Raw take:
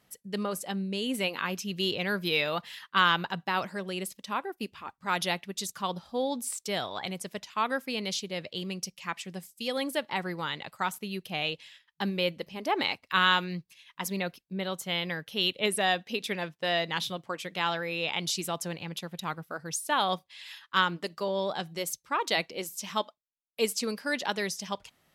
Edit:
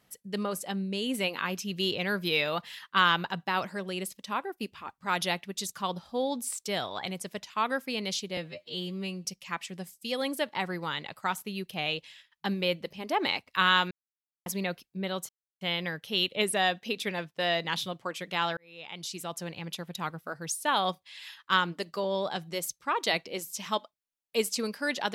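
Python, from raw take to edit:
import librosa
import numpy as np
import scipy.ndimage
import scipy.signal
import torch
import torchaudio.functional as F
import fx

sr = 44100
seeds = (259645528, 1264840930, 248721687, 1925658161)

y = fx.edit(x, sr, fx.stretch_span(start_s=8.37, length_s=0.44, factor=2.0),
    fx.silence(start_s=13.47, length_s=0.55),
    fx.insert_silence(at_s=14.85, length_s=0.32),
    fx.fade_in_span(start_s=17.81, length_s=1.16), tone=tone)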